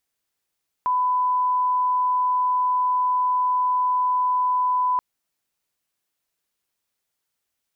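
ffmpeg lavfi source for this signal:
-f lavfi -i "sine=f=1000:d=4.13:r=44100,volume=0.06dB"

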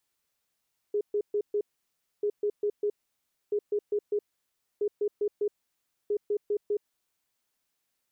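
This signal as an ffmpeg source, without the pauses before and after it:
-f lavfi -i "aevalsrc='0.0631*sin(2*PI*414*t)*clip(min(mod(mod(t,1.29),0.2),0.07-mod(mod(t,1.29),0.2))/0.005,0,1)*lt(mod(t,1.29),0.8)':d=6.45:s=44100"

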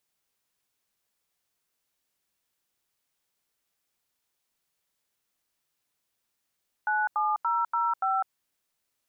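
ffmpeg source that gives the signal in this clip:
-f lavfi -i "aevalsrc='0.0501*clip(min(mod(t,0.288),0.203-mod(t,0.288))/0.002,0,1)*(eq(floor(t/0.288),0)*(sin(2*PI*852*mod(t,0.288))+sin(2*PI*1477*mod(t,0.288)))+eq(floor(t/0.288),1)*(sin(2*PI*852*mod(t,0.288))+sin(2*PI*1209*mod(t,0.288)))+eq(floor(t/0.288),2)*(sin(2*PI*941*mod(t,0.288))+sin(2*PI*1336*mod(t,0.288)))+eq(floor(t/0.288),3)*(sin(2*PI*941*mod(t,0.288))+sin(2*PI*1336*mod(t,0.288)))+eq(floor(t/0.288),4)*(sin(2*PI*770*mod(t,0.288))+sin(2*PI*1336*mod(t,0.288))))':d=1.44:s=44100"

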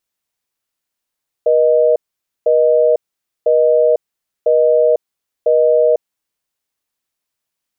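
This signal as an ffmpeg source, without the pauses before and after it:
-f lavfi -i "aevalsrc='0.266*(sin(2*PI*480*t)+sin(2*PI*620*t))*clip(min(mod(t,1),0.5-mod(t,1))/0.005,0,1)':d=4.73:s=44100"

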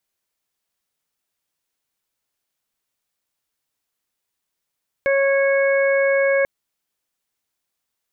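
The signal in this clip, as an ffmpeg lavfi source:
-f lavfi -i "aevalsrc='0.168*sin(2*PI*550*t)+0.0251*sin(2*PI*1100*t)+0.0668*sin(2*PI*1650*t)+0.0596*sin(2*PI*2200*t)':d=1.39:s=44100"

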